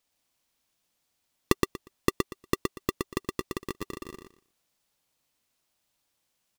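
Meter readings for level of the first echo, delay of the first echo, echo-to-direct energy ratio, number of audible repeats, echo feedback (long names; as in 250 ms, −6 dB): −3.5 dB, 119 ms, −3.5 dB, 3, 19%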